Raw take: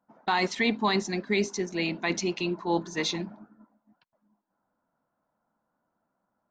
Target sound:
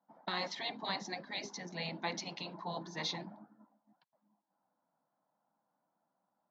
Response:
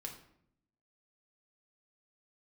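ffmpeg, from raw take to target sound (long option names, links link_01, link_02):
-af "afftfilt=real='re*lt(hypot(re,im),0.2)':imag='im*lt(hypot(re,im),0.2)':win_size=1024:overlap=0.75,highpass=frequency=140:width=0.5412,highpass=frequency=140:width=1.3066,equalizer=frequency=230:width_type=q:width=4:gain=-4,equalizer=frequency=400:width_type=q:width=4:gain=-7,equalizer=frequency=810:width_type=q:width=4:gain=5,equalizer=frequency=1400:width_type=q:width=4:gain=-5,equalizer=frequency=2600:width_type=q:width=4:gain=-9,lowpass=frequency=5200:width=0.5412,lowpass=frequency=5200:width=1.3066,volume=-4dB"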